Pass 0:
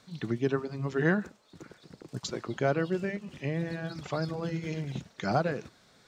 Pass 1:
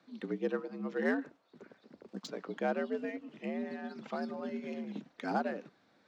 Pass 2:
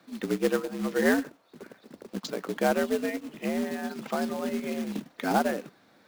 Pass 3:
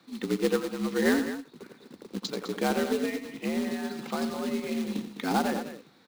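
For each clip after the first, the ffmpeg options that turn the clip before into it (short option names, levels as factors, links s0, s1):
-af "afreqshift=71,adynamicsmooth=sensitivity=4:basefreq=3500,volume=0.531"
-af "acrusher=bits=3:mode=log:mix=0:aa=0.000001,volume=2.51"
-filter_complex "[0:a]equalizer=f=630:t=o:w=0.33:g=-9,equalizer=f=1600:t=o:w=0.33:g=-4,equalizer=f=4000:t=o:w=0.33:g=5,equalizer=f=16000:t=o:w=0.33:g=-5,asplit=2[s0][s1];[s1]aecho=0:1:87.46|207:0.316|0.282[s2];[s0][s2]amix=inputs=2:normalize=0"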